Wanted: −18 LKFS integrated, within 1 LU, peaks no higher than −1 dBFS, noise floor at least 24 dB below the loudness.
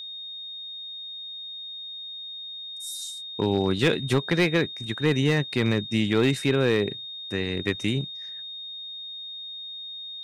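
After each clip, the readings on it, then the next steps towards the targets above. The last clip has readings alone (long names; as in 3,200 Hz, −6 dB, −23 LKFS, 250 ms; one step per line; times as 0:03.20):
share of clipped samples 0.3%; peaks flattened at −13.5 dBFS; interfering tone 3,700 Hz; level of the tone −35 dBFS; integrated loudness −27.0 LKFS; sample peak −13.5 dBFS; target loudness −18.0 LKFS
→ clipped peaks rebuilt −13.5 dBFS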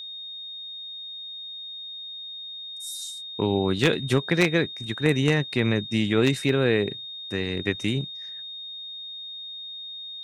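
share of clipped samples 0.0%; interfering tone 3,700 Hz; level of the tone −35 dBFS
→ notch filter 3,700 Hz, Q 30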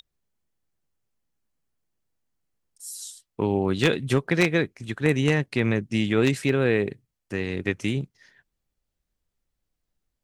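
interfering tone none found; integrated loudness −24.5 LKFS; sample peak −4.5 dBFS; target loudness −18.0 LKFS
→ level +6.5 dB
brickwall limiter −1 dBFS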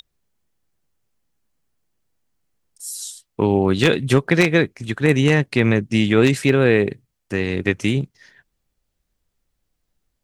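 integrated loudness −18.5 LKFS; sample peak −1.0 dBFS; background noise floor −76 dBFS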